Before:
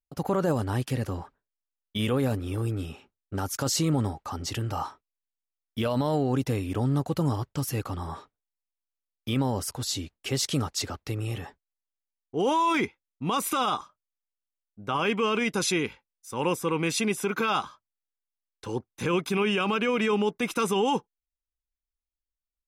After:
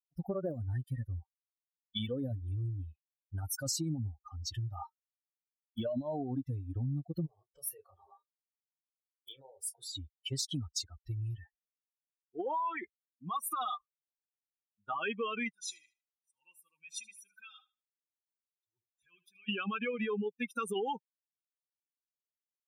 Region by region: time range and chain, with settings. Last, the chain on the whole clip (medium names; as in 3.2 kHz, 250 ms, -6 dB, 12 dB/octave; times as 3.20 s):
7.26–9.96 s: resonant low shelf 330 Hz -9.5 dB, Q 3 + compression 12:1, threshold -31 dBFS + doubling 30 ms -4.5 dB
12.36–13.61 s: dynamic bell 1.1 kHz, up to +5 dB, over -35 dBFS, Q 0.76 + compression 1.5:1, threshold -33 dBFS + loudspeaker Doppler distortion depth 0.1 ms
15.54–19.49 s: amplifier tone stack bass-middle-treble 5-5-5 + feedback delay 77 ms, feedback 60%, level -8.5 dB + decay stretcher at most 75 dB/s
whole clip: expander on every frequency bin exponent 3; compression 5:1, threshold -40 dBFS; trim +6.5 dB